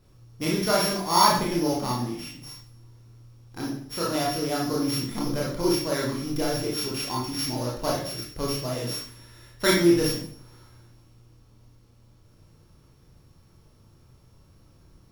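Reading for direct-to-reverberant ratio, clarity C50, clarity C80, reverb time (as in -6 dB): -4.5 dB, 2.5 dB, 7.5 dB, 0.55 s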